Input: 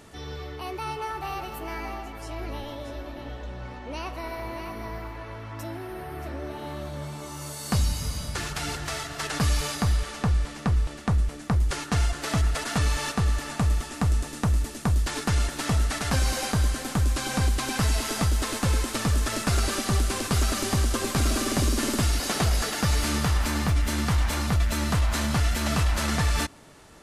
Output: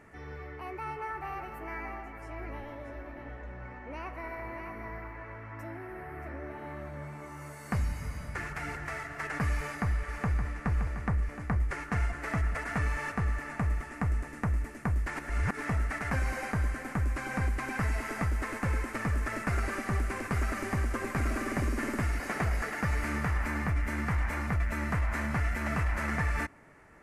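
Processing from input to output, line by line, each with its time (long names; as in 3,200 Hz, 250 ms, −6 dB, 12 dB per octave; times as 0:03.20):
0:09.51–0:10.51: delay throw 570 ms, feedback 65%, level −8 dB
0:15.16–0:15.62: reverse
whole clip: high shelf with overshoot 2,700 Hz −9.5 dB, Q 3; level −6.5 dB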